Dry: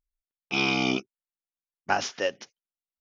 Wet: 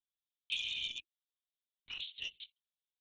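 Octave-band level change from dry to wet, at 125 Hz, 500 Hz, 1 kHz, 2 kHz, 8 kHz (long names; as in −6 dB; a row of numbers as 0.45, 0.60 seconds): −30.5 dB, below −40 dB, below −40 dB, −15.5 dB, can't be measured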